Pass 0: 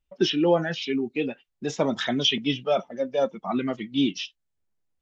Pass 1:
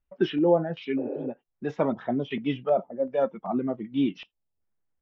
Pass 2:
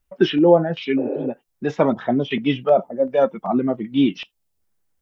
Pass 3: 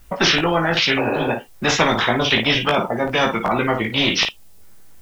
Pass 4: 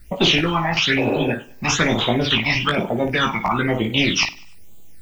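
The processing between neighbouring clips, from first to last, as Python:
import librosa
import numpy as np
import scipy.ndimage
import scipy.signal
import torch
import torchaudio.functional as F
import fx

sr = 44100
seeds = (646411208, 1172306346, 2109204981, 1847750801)

y1 = fx.filter_lfo_lowpass(x, sr, shape='square', hz=1.3, low_hz=770.0, high_hz=1700.0, q=1.1)
y1 = fx.spec_repair(y1, sr, seeds[0], start_s=1.01, length_s=0.23, low_hz=270.0, high_hz=3000.0, source='after')
y1 = y1 * librosa.db_to_amplitude(-1.5)
y2 = fx.high_shelf(y1, sr, hz=3800.0, db=7.5)
y2 = y2 * librosa.db_to_amplitude(7.5)
y3 = fx.room_early_taps(y2, sr, ms=(18, 55), db=(-4.0, -11.5))
y3 = fx.spectral_comp(y3, sr, ratio=4.0)
y3 = y3 * librosa.db_to_amplitude(-1.0)
y4 = fx.phaser_stages(y3, sr, stages=8, low_hz=430.0, high_hz=1700.0, hz=1.1, feedback_pct=25)
y4 = fx.echo_feedback(y4, sr, ms=99, feedback_pct=41, wet_db=-21.5)
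y4 = y4 * librosa.db_to_amplitude(2.0)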